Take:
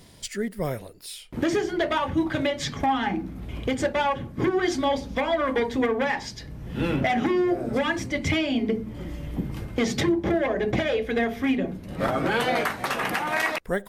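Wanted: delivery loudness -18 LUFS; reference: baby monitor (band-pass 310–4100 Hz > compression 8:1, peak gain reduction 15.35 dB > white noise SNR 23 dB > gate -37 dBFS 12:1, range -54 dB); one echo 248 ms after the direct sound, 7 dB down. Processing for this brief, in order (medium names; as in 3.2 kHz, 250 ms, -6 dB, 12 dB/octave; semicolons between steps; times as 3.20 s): band-pass 310–4100 Hz; delay 248 ms -7 dB; compression 8:1, threshold -34 dBFS; white noise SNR 23 dB; gate -37 dBFS 12:1, range -54 dB; trim +20 dB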